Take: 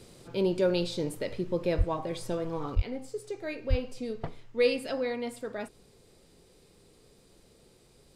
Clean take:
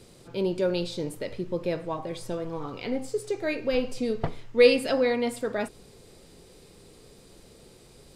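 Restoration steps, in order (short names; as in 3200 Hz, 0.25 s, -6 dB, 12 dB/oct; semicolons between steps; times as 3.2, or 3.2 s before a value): de-plosive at 1.77/2.75/3.69; gain correction +7.5 dB, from 2.75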